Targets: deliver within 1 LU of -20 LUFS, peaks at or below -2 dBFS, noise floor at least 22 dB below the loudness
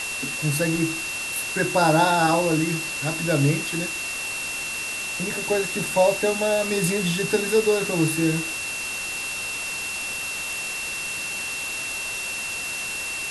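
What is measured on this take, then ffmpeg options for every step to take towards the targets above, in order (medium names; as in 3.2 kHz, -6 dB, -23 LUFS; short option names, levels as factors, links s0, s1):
steady tone 2.7 kHz; tone level -29 dBFS; noise floor -30 dBFS; noise floor target -46 dBFS; loudness -23.5 LUFS; peak level -7.0 dBFS; loudness target -20.0 LUFS
-> -af "bandreject=f=2700:w=30"
-af "afftdn=nr=16:nf=-30"
-af "volume=1.5"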